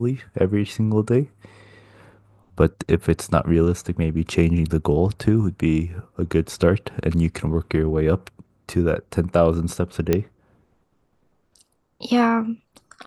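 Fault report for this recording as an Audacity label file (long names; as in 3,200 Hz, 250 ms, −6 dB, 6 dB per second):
10.130000	10.130000	click −6 dBFS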